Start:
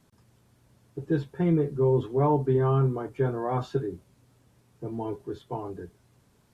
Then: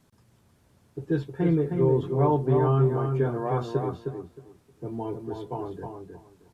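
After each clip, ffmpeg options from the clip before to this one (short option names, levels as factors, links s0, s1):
-filter_complex "[0:a]asplit=2[s0][s1];[s1]adelay=312,lowpass=f=2800:p=1,volume=0.562,asplit=2[s2][s3];[s3]adelay=312,lowpass=f=2800:p=1,volume=0.2,asplit=2[s4][s5];[s5]adelay=312,lowpass=f=2800:p=1,volume=0.2[s6];[s0][s2][s4][s6]amix=inputs=4:normalize=0"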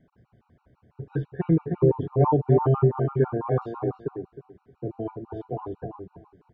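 -af "lowpass=1700,afftfilt=real='re*gt(sin(2*PI*6*pts/sr)*(1-2*mod(floor(b*sr/1024/750),2)),0)':imag='im*gt(sin(2*PI*6*pts/sr)*(1-2*mod(floor(b*sr/1024/750),2)),0)':win_size=1024:overlap=0.75,volume=1.58"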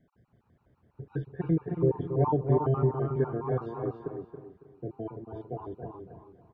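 -af "aecho=1:1:277|554|831:0.355|0.106|0.0319,volume=0.531"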